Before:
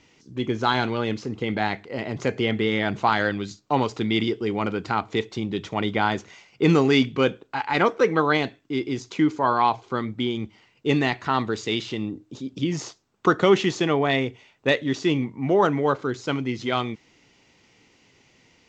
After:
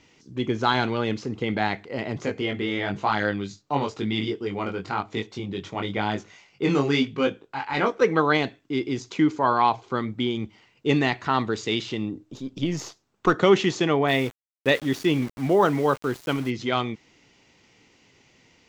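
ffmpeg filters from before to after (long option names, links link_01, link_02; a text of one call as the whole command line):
ffmpeg -i in.wav -filter_complex "[0:a]asettb=1/sr,asplit=3[link_01][link_02][link_03];[link_01]atrim=end=2.194[link_04];[link_02]atrim=start=2.19:end=8.02,asetpts=PTS-STARTPTS,afade=type=in:duration=0.004:curve=qsin,afade=type=out:start_time=5.826:duration=0.004:curve=qsin,flanger=delay=19:depth=2.6:speed=1[link_05];[link_03]atrim=start=8.016[link_06];[link_04][link_05]acrossfade=duration=0.004:curve1=hsin:curve2=qsin[link_07];[link_07][link_06]acrossfade=duration=0.004:curve1=qsin:curve2=hsin,asettb=1/sr,asplit=3[link_08][link_09][link_10];[link_08]atrim=end=12.234[link_11];[link_09]atrim=start=12.23:end=13.34,asetpts=PTS-STARTPTS,afade=type=in:duration=0.004:curve=qsin,afade=type=out:start_time=1.106:duration=0.004:curve=qsin,aeval=exprs='if(lt(val(0),0),0.708*val(0),val(0))':channel_layout=same[link_12];[link_10]atrim=start=13.336[link_13];[link_11][link_12]acrossfade=duration=0.004:curve1=hsin:curve2=qsin[link_14];[link_14][link_13]acrossfade=duration=0.004:curve1=qsin:curve2=hsin,asplit=3[link_15][link_16][link_17];[link_15]afade=type=out:start_time=14.07:duration=0.02[link_18];[link_16]aeval=exprs='val(0)*gte(abs(val(0)),0.0168)':channel_layout=same,afade=type=in:start_time=14.07:duration=0.02,afade=type=out:start_time=16.49:duration=0.02[link_19];[link_17]afade=type=in:start_time=16.49:duration=0.02[link_20];[link_18][link_19][link_20]amix=inputs=3:normalize=0" out.wav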